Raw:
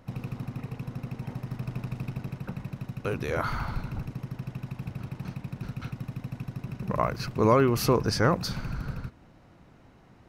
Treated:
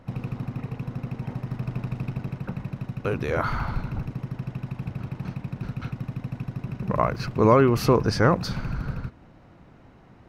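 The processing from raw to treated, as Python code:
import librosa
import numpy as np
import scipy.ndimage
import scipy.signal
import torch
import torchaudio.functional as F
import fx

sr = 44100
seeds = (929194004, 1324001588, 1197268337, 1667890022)

y = fx.high_shelf(x, sr, hz=5000.0, db=-10.0)
y = y * 10.0 ** (4.0 / 20.0)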